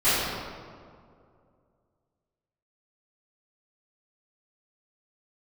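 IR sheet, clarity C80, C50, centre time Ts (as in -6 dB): -0.5 dB, -3.5 dB, 132 ms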